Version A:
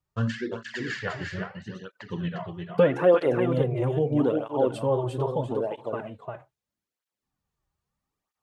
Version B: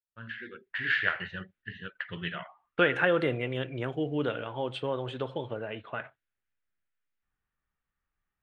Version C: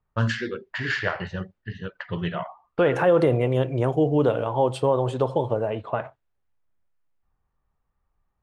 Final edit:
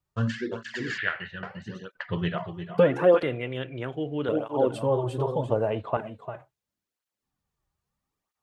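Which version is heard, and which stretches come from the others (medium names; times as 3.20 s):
A
0.98–1.43 s: from B
1.95–2.38 s: from C
3.23–4.29 s: from B
5.50–5.97 s: from C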